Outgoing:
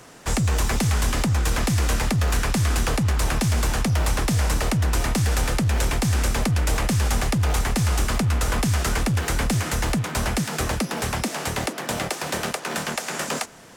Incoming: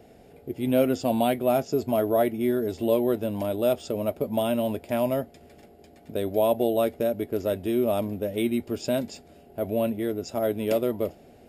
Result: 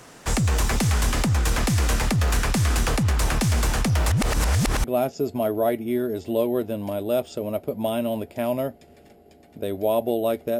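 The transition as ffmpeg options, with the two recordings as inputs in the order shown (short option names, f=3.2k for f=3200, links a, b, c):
-filter_complex "[0:a]apad=whole_dur=10.59,atrim=end=10.59,asplit=2[a][b];[a]atrim=end=4.102[c];[b]atrim=start=4.098:end=4.842,asetpts=PTS-STARTPTS,areverse[d];[1:a]atrim=start=1.368:end=7.12[e];[c][d]acrossfade=d=0.004:c1=hsin:c2=hsin[f];[f][e]acrossfade=d=0.004:c1=hsin:c2=hsin"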